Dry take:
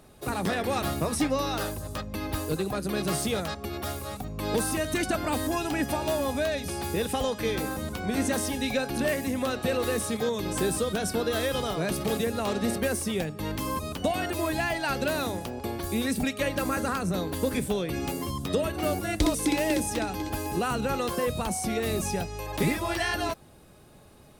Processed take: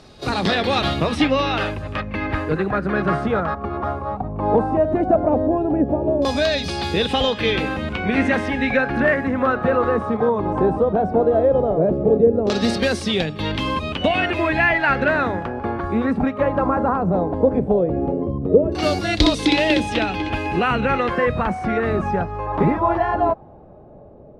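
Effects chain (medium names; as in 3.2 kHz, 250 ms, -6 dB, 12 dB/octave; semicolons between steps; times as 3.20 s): LFO low-pass saw down 0.16 Hz 430–5000 Hz; reverse echo 30 ms -16.5 dB; trim +7.5 dB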